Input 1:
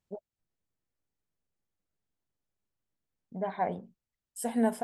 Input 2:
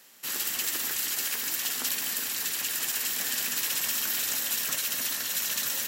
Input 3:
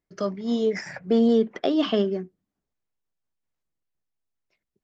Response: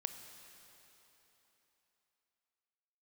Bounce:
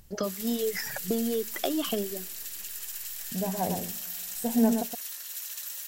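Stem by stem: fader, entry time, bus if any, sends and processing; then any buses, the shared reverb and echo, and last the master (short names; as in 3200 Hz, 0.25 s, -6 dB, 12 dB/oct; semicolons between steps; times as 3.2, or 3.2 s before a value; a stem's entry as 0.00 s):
-5.0 dB, 0.00 s, send -11 dB, echo send -5 dB, tilt -4 dB/oct; upward compressor, threshold -36 dBFS
-15.5 dB, 0.00 s, no send, no echo send, HPF 530 Hz 12 dB/oct
+0.5 dB, 0.00 s, send -17 dB, no echo send, reverb removal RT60 1.6 s; compressor, threshold -28 dBFS, peak gain reduction 11.5 dB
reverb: on, RT60 3.6 s, pre-delay 21 ms
echo: echo 0.118 s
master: high shelf 5000 Hz +9.5 dB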